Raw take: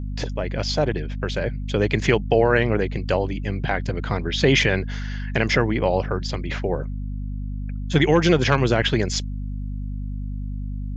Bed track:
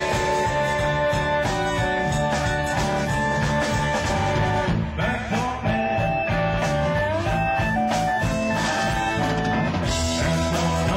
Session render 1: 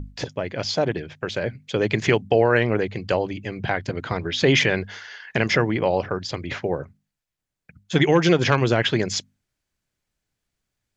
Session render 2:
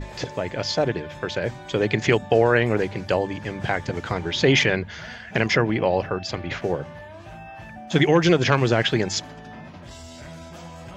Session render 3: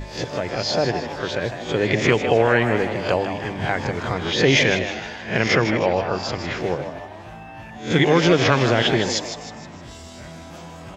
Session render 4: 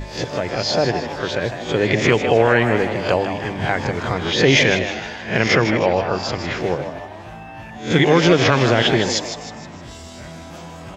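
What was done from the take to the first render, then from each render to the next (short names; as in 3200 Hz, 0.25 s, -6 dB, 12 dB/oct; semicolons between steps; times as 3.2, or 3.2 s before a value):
notches 50/100/150/200/250 Hz
add bed track -18 dB
spectral swells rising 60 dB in 0.36 s; frequency-shifting echo 0.156 s, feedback 45%, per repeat +120 Hz, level -9 dB
gain +2.5 dB; limiter -2 dBFS, peak gain reduction 2 dB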